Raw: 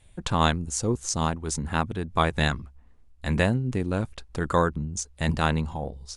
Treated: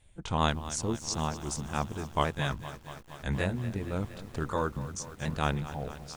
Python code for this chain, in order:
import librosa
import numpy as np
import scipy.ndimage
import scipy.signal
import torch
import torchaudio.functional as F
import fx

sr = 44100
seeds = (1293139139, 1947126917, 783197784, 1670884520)

y = fx.pitch_ramps(x, sr, semitones=-2.0, every_ms=375)
y = fx.echo_crushed(y, sr, ms=233, feedback_pct=80, bits=7, wet_db=-14)
y = F.gain(torch.from_numpy(y), -5.0).numpy()